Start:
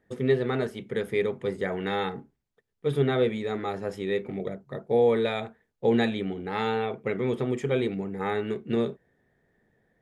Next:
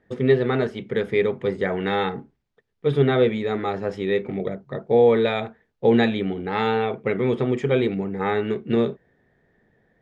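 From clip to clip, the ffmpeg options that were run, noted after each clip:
-af "lowpass=4.8k,volume=5.5dB"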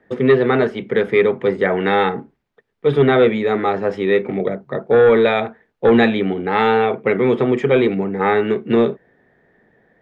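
-filter_complex "[0:a]equalizer=f=2.1k:t=o:w=2:g=7.5,acrossover=split=170|1200[a][b][c];[b]aeval=exprs='0.473*sin(PI/2*1.58*val(0)/0.473)':c=same[d];[a][d][c]amix=inputs=3:normalize=0,volume=-1dB"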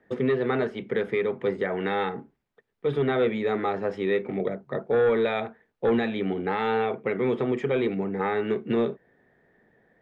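-af "alimiter=limit=-10.5dB:level=0:latency=1:release=341,volume=-6dB"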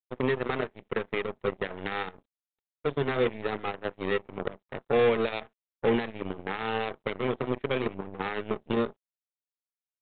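-af "aeval=exprs='0.158*(cos(1*acos(clip(val(0)/0.158,-1,1)))-cos(1*PI/2))+0.0501*(cos(3*acos(clip(val(0)/0.158,-1,1)))-cos(3*PI/2))+0.00447*(cos(6*acos(clip(val(0)/0.158,-1,1)))-cos(6*PI/2))':c=same" -ar 8000 -c:a adpcm_g726 -b:a 40k

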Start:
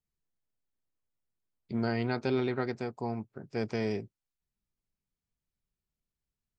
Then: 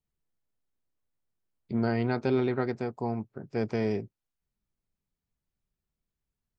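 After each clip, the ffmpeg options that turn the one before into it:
-af "highshelf=f=2.2k:g=-7.5,volume=3.5dB"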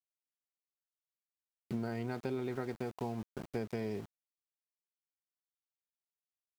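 -af "aeval=exprs='val(0)*gte(abs(val(0)),0.00841)':c=same,acompressor=threshold=-32dB:ratio=6,volume=-1.5dB"

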